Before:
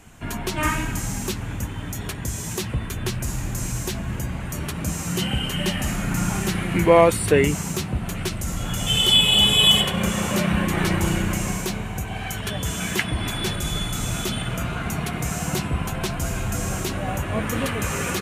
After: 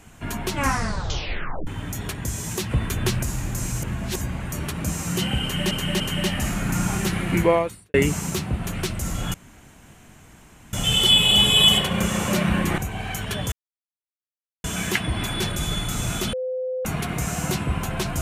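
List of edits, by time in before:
0.52 s: tape stop 1.15 s
2.71–3.23 s: gain +3.5 dB
3.82–4.21 s: reverse
5.42–5.71 s: loop, 3 plays
6.82–7.36 s: fade out quadratic
8.76 s: insert room tone 1.39 s
10.81–11.94 s: delete
12.68 s: insert silence 1.12 s
14.37–14.89 s: bleep 512 Hz -24 dBFS

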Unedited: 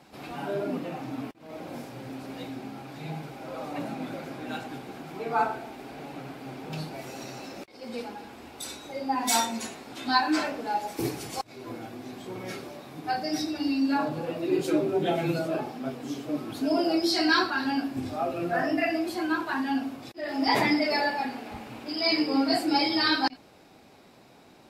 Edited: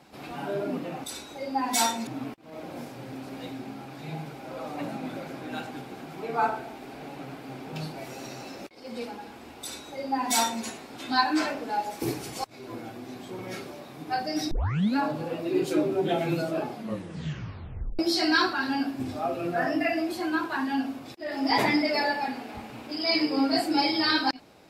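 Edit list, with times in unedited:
8.58–9.61 s: copy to 1.04 s
13.48 s: tape start 0.45 s
15.65 s: tape stop 1.31 s

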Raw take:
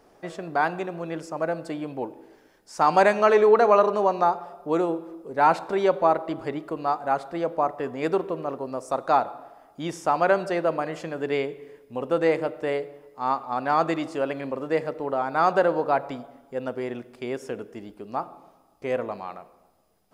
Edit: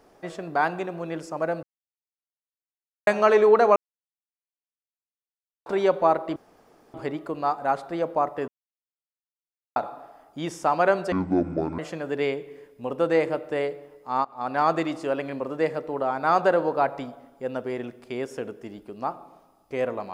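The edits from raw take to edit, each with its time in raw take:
1.63–3.07 s: mute
3.76–5.66 s: mute
6.36 s: insert room tone 0.58 s
7.90–9.18 s: mute
10.54–10.90 s: speed 54%
13.36–13.72 s: fade in equal-power, from -21.5 dB

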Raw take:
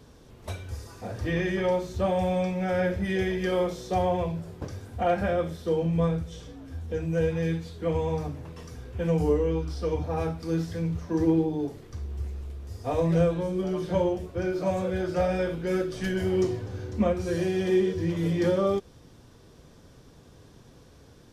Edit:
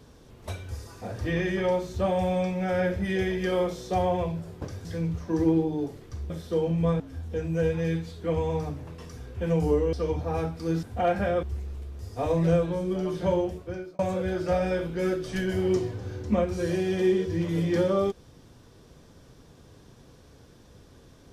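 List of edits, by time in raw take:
4.85–5.45 s: swap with 10.66–12.11 s
6.15–6.58 s: delete
9.51–9.76 s: delete
14.18–14.67 s: fade out

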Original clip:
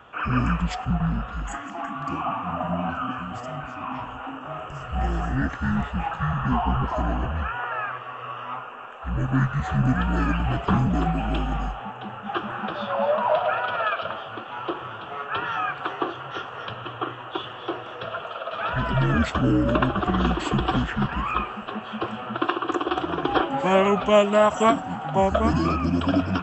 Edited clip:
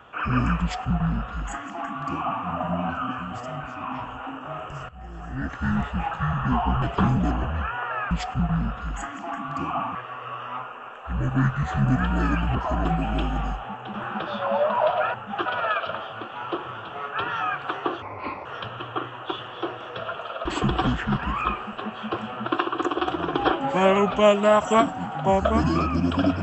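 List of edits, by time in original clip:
0.62–2.46 s: copy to 7.92 s
4.89–5.66 s: fade in quadratic, from -17.5 dB
6.82–7.12 s: swap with 10.52–11.01 s
12.10–12.42 s: move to 13.62 s
16.18–16.51 s: speed 76%
18.51–20.35 s: delete

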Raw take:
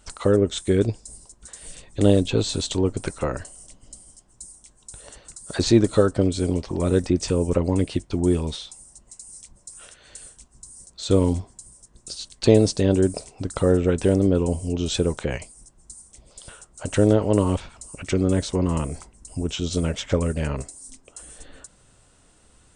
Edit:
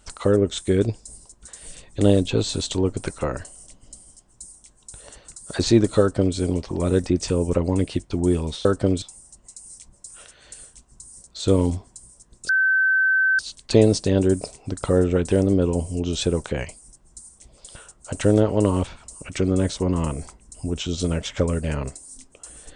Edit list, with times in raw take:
6.00–6.37 s: copy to 8.65 s
12.12 s: add tone 1.54 kHz -15.5 dBFS 0.90 s

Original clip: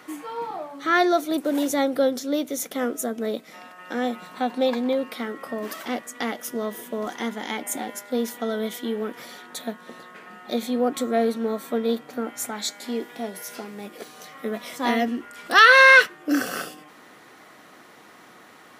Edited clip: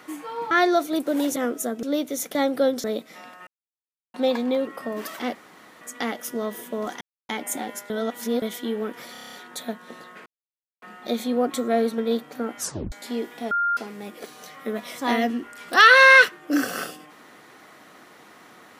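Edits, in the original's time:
0.51–0.89 s: delete
1.74–2.23 s: swap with 2.75–3.22 s
3.85–4.52 s: mute
5.05–5.33 s: delete
6.01 s: insert room tone 0.46 s
7.21–7.49 s: mute
8.10–8.62 s: reverse
9.32 s: stutter 0.03 s, 8 plays
10.25 s: insert silence 0.56 s
11.41–11.76 s: delete
12.37 s: tape stop 0.33 s
13.29–13.55 s: bleep 1.4 kHz -19.5 dBFS

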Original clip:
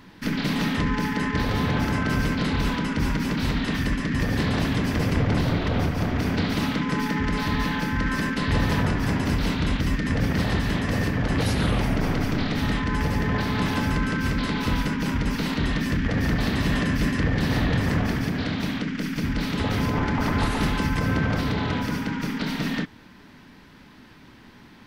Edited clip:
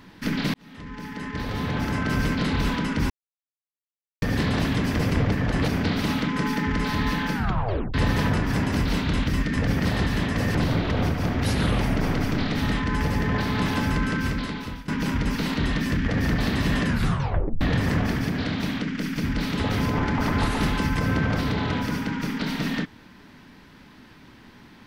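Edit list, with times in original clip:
0.54–2.26 s: fade in
3.10–4.22 s: mute
5.32–6.21 s: swap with 11.08–11.44 s
7.87 s: tape stop 0.60 s
14.18–14.88 s: fade out linear, to -21 dB
16.87 s: tape stop 0.74 s

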